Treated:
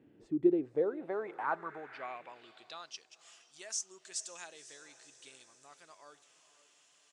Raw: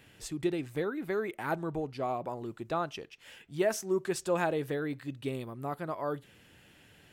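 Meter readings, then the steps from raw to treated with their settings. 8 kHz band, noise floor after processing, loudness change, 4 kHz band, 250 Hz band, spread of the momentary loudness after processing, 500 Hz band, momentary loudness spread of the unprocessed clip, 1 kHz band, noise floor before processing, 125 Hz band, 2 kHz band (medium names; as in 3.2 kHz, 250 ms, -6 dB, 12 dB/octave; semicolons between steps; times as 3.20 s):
+2.5 dB, -68 dBFS, -2.5 dB, -2.5 dB, -2.5 dB, 24 LU, -5.0 dB, 10 LU, -6.0 dB, -60 dBFS, -16.5 dB, -7.0 dB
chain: echo that smears into a reverb 514 ms, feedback 57%, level -15 dB; resampled via 22.05 kHz; band-pass sweep 300 Hz -> 6.5 kHz, 0.35–3.11 s; trim +5 dB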